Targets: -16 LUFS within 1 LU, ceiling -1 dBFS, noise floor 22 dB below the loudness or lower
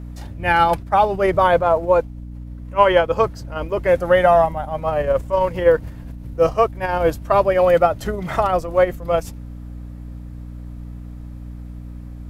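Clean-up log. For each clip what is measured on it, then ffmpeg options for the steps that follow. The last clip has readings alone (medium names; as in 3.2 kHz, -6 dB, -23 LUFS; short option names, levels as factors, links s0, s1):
hum 60 Hz; highest harmonic 300 Hz; hum level -31 dBFS; loudness -18.0 LUFS; peak level -1.0 dBFS; loudness target -16.0 LUFS
-> -af "bandreject=f=60:t=h:w=4,bandreject=f=120:t=h:w=4,bandreject=f=180:t=h:w=4,bandreject=f=240:t=h:w=4,bandreject=f=300:t=h:w=4"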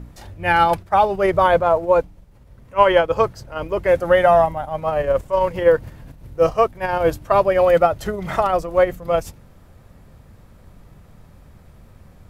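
hum not found; loudness -18.0 LUFS; peak level -1.0 dBFS; loudness target -16.0 LUFS
-> -af "volume=1.26,alimiter=limit=0.891:level=0:latency=1"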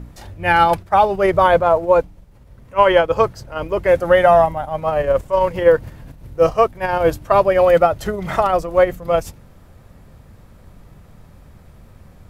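loudness -16.0 LUFS; peak level -1.0 dBFS; noise floor -46 dBFS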